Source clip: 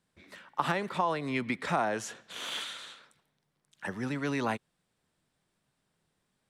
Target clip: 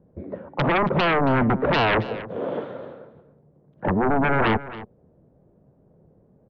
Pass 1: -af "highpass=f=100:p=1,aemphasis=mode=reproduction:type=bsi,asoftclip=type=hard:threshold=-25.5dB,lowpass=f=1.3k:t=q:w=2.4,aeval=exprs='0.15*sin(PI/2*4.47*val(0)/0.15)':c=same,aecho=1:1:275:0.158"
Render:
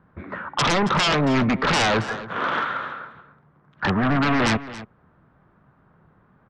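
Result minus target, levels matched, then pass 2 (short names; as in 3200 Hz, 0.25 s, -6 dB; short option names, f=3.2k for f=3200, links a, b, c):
hard clip: distortion +14 dB; 500 Hz band -3.5 dB
-af "highpass=f=100:p=1,aemphasis=mode=reproduction:type=bsi,asoftclip=type=hard:threshold=-17dB,lowpass=f=530:t=q:w=2.4,aeval=exprs='0.15*sin(PI/2*4.47*val(0)/0.15)':c=same,aecho=1:1:275:0.158"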